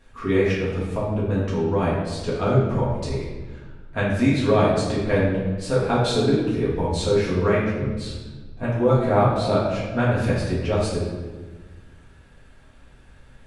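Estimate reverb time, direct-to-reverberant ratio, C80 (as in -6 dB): 1.3 s, -8.5 dB, 3.5 dB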